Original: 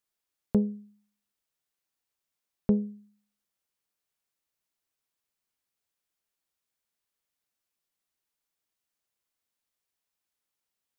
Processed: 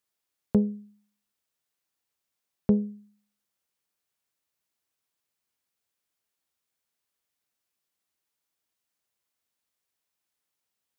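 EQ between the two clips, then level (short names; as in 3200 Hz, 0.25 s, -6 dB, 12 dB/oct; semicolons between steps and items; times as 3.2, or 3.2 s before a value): HPF 50 Hz; +2.0 dB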